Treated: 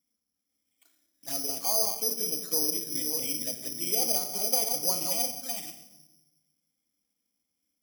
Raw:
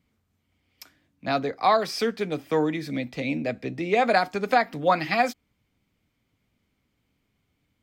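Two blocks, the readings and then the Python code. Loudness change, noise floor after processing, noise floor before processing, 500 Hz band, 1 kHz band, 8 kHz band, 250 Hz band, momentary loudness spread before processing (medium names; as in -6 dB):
-2.0 dB, -83 dBFS, -75 dBFS, -12.0 dB, -16.0 dB, +19.5 dB, -12.0 dB, 9 LU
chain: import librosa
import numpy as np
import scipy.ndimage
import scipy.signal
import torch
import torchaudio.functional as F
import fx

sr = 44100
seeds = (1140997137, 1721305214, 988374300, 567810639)

y = fx.reverse_delay(x, sr, ms=357, wet_db=-4.0)
y = fx.highpass(y, sr, hz=440.0, slope=6)
y = fx.peak_eq(y, sr, hz=1400.0, db=-9.0, octaves=2.7)
y = fx.env_flanger(y, sr, rest_ms=3.8, full_db=-29.0)
y = fx.room_shoebox(y, sr, seeds[0], volume_m3=400.0, walls='mixed', distance_m=0.66)
y = (np.kron(scipy.signal.resample_poly(y, 1, 8), np.eye(8)[0]) * 8)[:len(y)]
y = y * librosa.db_to_amplitude(-7.0)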